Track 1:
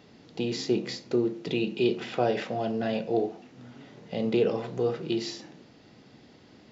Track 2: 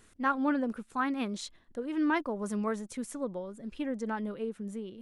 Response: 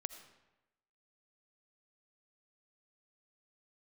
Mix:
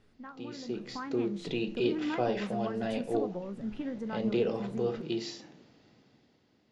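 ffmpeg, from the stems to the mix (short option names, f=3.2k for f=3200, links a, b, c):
-filter_complex "[0:a]volume=-15.5dB[a];[1:a]bass=f=250:g=6,treble=f=4k:g=-14,acompressor=threshold=-35dB:ratio=6,flanger=delay=9.5:depth=9.6:regen=65:speed=0.93:shape=sinusoidal,volume=-5dB[b];[a][b]amix=inputs=2:normalize=0,dynaudnorm=f=210:g=9:m=11dB"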